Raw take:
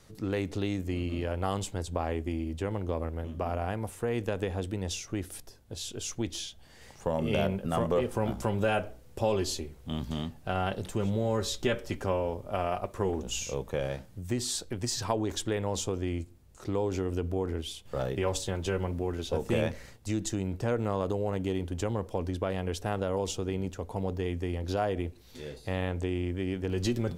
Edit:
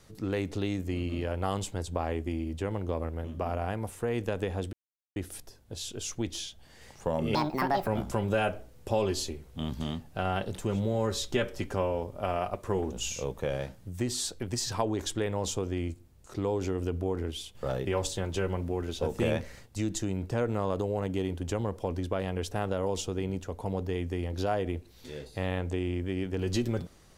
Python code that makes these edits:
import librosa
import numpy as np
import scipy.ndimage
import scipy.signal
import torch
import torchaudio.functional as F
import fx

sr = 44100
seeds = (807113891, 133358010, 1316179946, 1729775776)

y = fx.edit(x, sr, fx.silence(start_s=4.73, length_s=0.43),
    fx.speed_span(start_s=7.35, length_s=0.83, speed=1.58), tone=tone)